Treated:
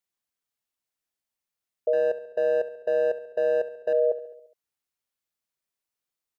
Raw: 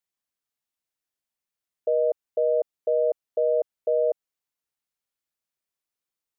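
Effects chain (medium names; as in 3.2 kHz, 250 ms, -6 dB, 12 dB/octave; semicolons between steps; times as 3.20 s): 1.93–3.93 s: power-law waveshaper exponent 1.4; feedback delay 69 ms, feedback 59%, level -14.5 dB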